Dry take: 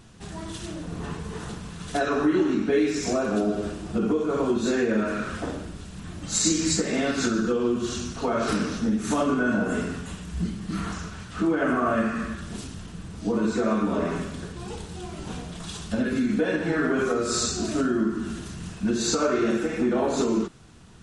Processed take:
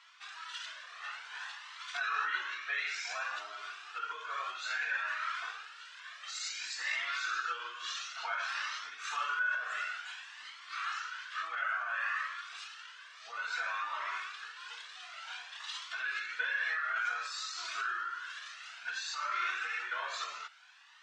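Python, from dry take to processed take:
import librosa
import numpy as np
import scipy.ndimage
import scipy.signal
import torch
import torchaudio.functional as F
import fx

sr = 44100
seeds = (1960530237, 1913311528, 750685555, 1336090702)

p1 = scipy.signal.sosfilt(scipy.signal.butter(4, 1300.0, 'highpass', fs=sr, output='sos'), x)
p2 = fx.over_compress(p1, sr, threshold_db=-36.0, ratio=-0.5)
p3 = p1 + (p2 * librosa.db_to_amplitude(2.0))
p4 = fx.air_absorb(p3, sr, metres=190.0)
y = fx.comb_cascade(p4, sr, direction='rising', hz=0.57)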